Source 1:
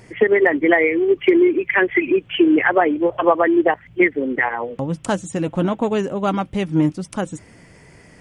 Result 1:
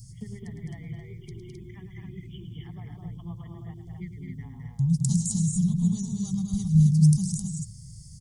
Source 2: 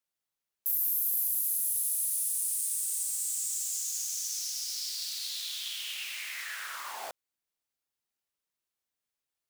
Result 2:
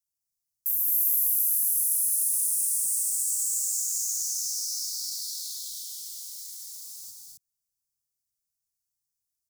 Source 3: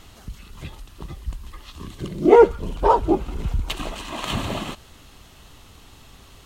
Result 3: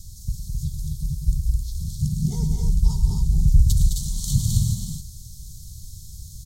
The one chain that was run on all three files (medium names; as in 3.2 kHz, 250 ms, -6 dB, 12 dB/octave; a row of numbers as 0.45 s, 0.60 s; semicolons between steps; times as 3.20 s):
inverse Chebyshev band-stop 290–2800 Hz, stop band 40 dB; dynamic bell 150 Hz, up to +4 dB, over -48 dBFS, Q 3.5; loudspeakers at several distances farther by 37 m -10 dB, 72 m -5 dB, 90 m -4 dB; normalise loudness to -24 LUFS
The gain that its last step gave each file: +4.5 dB, +2.5 dB, +8.5 dB